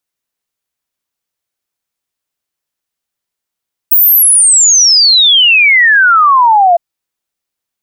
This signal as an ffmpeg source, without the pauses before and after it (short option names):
-f lavfi -i "aevalsrc='0.668*clip(min(t,2.86-t)/0.01,0,1)*sin(2*PI*16000*2.86/log(670/16000)*(exp(log(670/16000)*t/2.86)-1))':d=2.86:s=44100"